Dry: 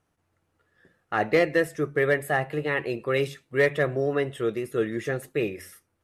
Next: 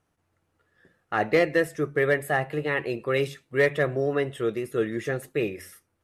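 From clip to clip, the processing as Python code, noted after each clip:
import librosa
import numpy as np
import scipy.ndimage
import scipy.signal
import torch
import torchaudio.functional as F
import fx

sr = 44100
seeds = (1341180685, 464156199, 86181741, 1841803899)

y = x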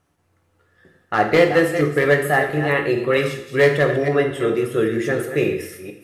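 y = fx.reverse_delay(x, sr, ms=227, wet_db=-9.5)
y = np.clip(y, -10.0 ** (-14.0 / 20.0), 10.0 ** (-14.0 / 20.0))
y = fx.rev_double_slope(y, sr, seeds[0], early_s=0.64, late_s=1.9, knee_db=-18, drr_db=3.5)
y = y * 10.0 ** (5.5 / 20.0)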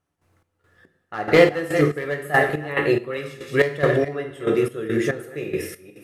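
y = fx.step_gate(x, sr, bpm=141, pattern='..xx..xx..', floor_db=-12.0, edge_ms=4.5)
y = y * 10.0 ** (1.0 / 20.0)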